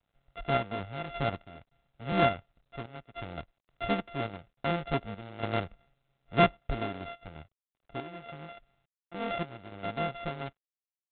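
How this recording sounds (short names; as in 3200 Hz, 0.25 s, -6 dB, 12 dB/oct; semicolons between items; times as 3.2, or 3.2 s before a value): a buzz of ramps at a fixed pitch in blocks of 64 samples; random-step tremolo, depth 90%; G.726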